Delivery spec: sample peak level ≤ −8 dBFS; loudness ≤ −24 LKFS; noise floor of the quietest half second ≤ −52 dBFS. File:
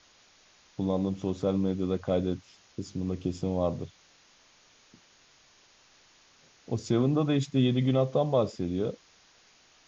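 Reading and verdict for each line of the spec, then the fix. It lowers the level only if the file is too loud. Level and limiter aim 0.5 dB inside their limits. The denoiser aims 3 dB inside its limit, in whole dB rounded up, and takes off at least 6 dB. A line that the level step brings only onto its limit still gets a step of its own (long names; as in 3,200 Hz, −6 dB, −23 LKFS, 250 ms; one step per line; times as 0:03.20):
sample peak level −13.5 dBFS: in spec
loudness −29.0 LKFS: in spec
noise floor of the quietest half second −61 dBFS: in spec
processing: no processing needed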